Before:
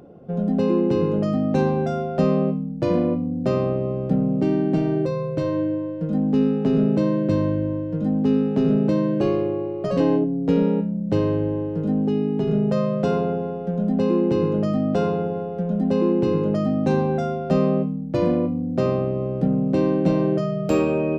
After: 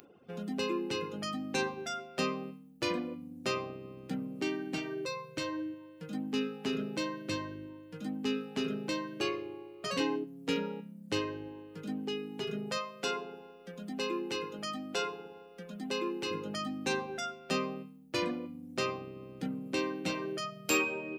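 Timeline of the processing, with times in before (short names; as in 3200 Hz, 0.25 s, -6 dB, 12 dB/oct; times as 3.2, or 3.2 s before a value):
12.78–16.31 bell 89 Hz -8.5 dB 2.3 oct
whole clip: fifteen-band EQ 160 Hz -7 dB, 630 Hz -11 dB, 2500 Hz +4 dB; reverb removal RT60 1.3 s; tilt +4 dB/oct; gain -2.5 dB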